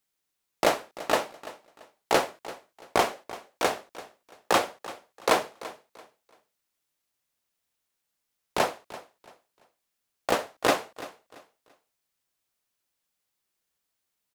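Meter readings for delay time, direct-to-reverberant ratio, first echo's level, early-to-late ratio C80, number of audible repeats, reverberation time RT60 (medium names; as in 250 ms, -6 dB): 338 ms, no reverb, -17.0 dB, no reverb, 2, no reverb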